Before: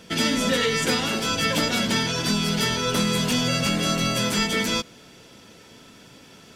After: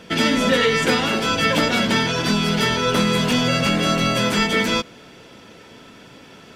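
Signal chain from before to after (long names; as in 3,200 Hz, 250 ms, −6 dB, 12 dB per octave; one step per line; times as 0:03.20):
bass and treble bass −3 dB, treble −9 dB
level +6 dB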